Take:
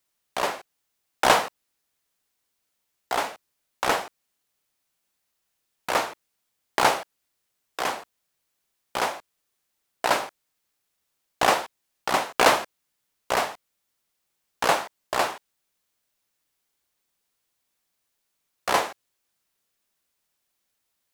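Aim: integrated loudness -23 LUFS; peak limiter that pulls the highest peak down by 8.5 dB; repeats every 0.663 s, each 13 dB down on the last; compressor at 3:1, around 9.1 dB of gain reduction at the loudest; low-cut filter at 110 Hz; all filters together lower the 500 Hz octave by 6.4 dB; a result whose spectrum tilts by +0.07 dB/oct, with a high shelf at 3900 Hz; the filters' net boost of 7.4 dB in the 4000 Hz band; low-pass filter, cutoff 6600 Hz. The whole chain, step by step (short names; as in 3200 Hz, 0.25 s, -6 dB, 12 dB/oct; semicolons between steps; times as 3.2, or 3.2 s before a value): HPF 110 Hz; LPF 6600 Hz; bell 500 Hz -9 dB; high shelf 3900 Hz +8.5 dB; bell 4000 Hz +5 dB; compressor 3:1, threshold -24 dBFS; limiter -13 dBFS; feedback echo 0.663 s, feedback 22%, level -13 dB; gain +9 dB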